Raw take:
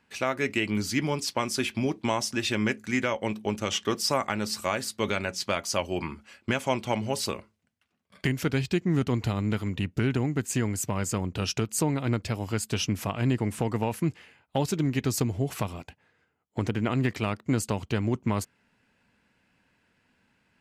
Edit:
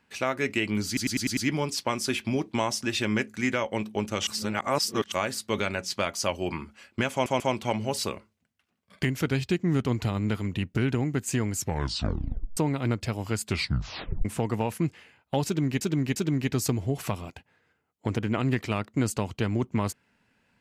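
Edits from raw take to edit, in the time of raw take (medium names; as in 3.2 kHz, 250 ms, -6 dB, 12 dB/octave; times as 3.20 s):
0.87 s: stutter 0.10 s, 6 plays
3.77–4.62 s: reverse
6.62 s: stutter 0.14 s, 3 plays
10.76 s: tape stop 1.03 s
12.67 s: tape stop 0.80 s
14.68–15.03 s: loop, 3 plays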